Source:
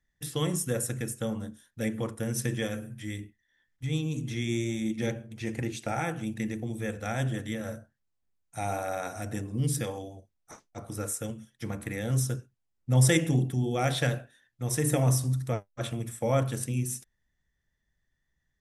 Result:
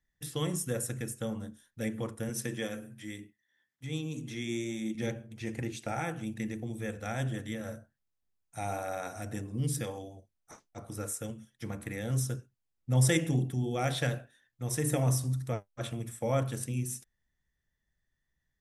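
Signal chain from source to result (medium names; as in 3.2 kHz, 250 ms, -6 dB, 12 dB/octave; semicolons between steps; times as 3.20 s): 2.29–4.95 s: high-pass 160 Hz 12 dB/octave; trim -3.5 dB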